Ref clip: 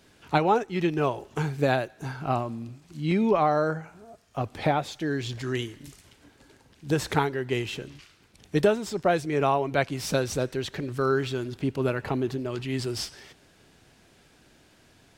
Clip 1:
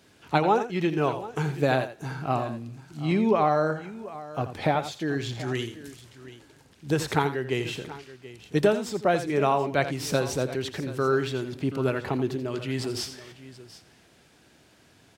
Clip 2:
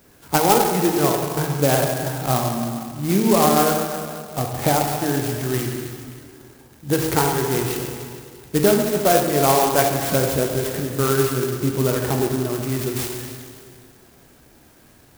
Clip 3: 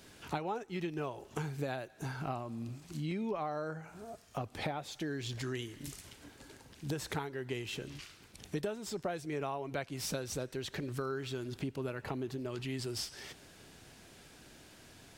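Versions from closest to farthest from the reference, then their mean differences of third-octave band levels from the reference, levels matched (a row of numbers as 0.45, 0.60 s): 1, 3, 2; 2.5, 5.5, 11.0 dB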